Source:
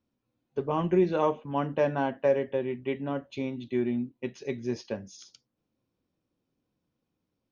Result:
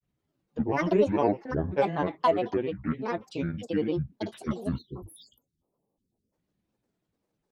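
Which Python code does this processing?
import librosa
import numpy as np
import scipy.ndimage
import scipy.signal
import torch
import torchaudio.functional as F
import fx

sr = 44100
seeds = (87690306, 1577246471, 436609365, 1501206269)

y = fx.spec_erase(x, sr, start_s=4.77, length_s=1.55, low_hz=740.0, high_hz=5700.0)
y = fx.granulator(y, sr, seeds[0], grain_ms=100.0, per_s=20.0, spray_ms=21.0, spread_st=12)
y = y * librosa.db_to_amplitude(2.0)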